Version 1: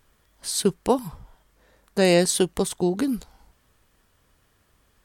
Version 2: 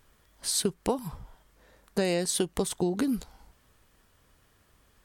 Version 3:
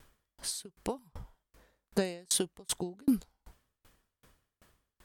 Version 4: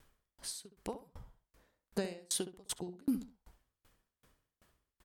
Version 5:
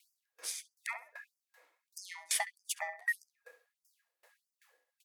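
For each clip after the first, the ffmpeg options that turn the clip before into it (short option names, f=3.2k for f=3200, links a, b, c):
-af "acompressor=threshold=-23dB:ratio=10"
-af "aeval=exprs='val(0)*pow(10,-39*if(lt(mod(2.6*n/s,1),2*abs(2.6)/1000),1-mod(2.6*n/s,1)/(2*abs(2.6)/1000),(mod(2.6*n/s,1)-2*abs(2.6)/1000)/(1-2*abs(2.6)/1000))/20)':c=same,volume=5.5dB"
-filter_complex "[0:a]asplit=2[a][b];[b]adelay=67,lowpass=f=1.9k:p=1,volume=-11dB,asplit=2[c][d];[d]adelay=67,lowpass=f=1.9k:p=1,volume=0.26,asplit=2[e][f];[f]adelay=67,lowpass=f=1.9k:p=1,volume=0.26[g];[a][c][e][g]amix=inputs=4:normalize=0,volume=-6dB"
-af "afftfilt=real='real(if(lt(b,960),b+48*(1-2*mod(floor(b/48),2)),b),0)':imag='imag(if(lt(b,960),b+48*(1-2*mod(floor(b/48),2)),b),0)':win_size=2048:overlap=0.75,aeval=exprs='val(0)*sin(2*PI*580*n/s)':c=same,afftfilt=real='re*gte(b*sr/1024,260*pow(4800/260,0.5+0.5*sin(2*PI*1.6*pts/sr)))':imag='im*gte(b*sr/1024,260*pow(4800/260,0.5+0.5*sin(2*PI*1.6*pts/sr)))':win_size=1024:overlap=0.75,volume=6dB"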